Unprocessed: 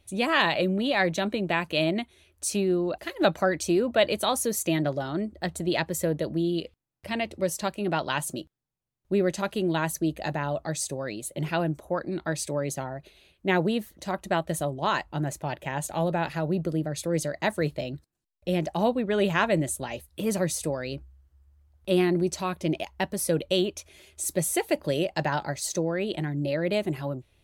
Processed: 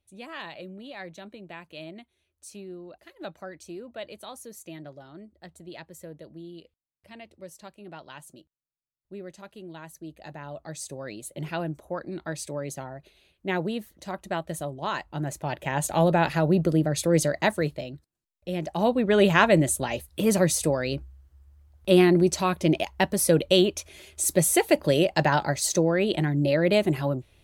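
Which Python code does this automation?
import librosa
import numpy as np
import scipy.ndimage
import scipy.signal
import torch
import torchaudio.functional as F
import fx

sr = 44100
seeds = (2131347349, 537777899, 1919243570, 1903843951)

y = fx.gain(x, sr, db=fx.line((9.89, -16.0), (11.07, -4.0), (14.96, -4.0), (15.95, 5.5), (17.32, 5.5), (17.93, -4.5), (18.53, -4.5), (19.09, 5.0)))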